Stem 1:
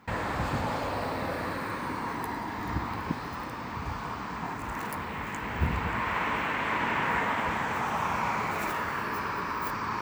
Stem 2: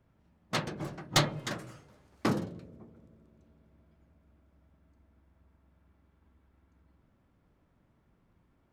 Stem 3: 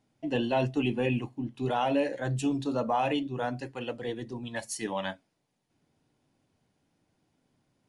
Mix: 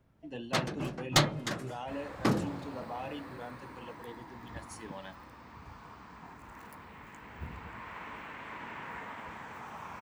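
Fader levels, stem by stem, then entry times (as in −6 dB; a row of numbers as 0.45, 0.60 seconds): −15.0, +1.0, −13.0 decibels; 1.80, 0.00, 0.00 seconds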